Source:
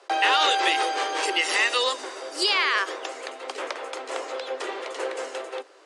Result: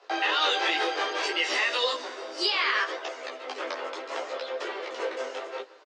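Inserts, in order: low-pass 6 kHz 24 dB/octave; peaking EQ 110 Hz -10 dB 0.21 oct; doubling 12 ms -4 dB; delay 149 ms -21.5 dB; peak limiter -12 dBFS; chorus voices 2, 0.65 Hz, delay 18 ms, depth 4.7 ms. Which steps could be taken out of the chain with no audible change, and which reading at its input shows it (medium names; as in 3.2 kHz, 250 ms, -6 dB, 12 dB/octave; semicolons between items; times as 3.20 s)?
peaking EQ 110 Hz: input has nothing below 250 Hz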